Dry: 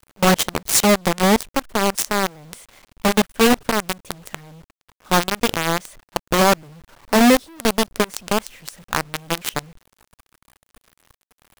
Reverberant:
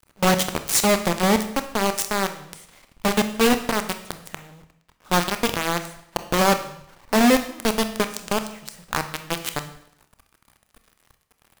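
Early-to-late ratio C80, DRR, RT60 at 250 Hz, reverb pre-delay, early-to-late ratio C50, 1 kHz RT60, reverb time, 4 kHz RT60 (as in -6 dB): 14.0 dB, 8.0 dB, 0.70 s, 24 ms, 11.0 dB, 0.70 s, 0.70 s, 0.70 s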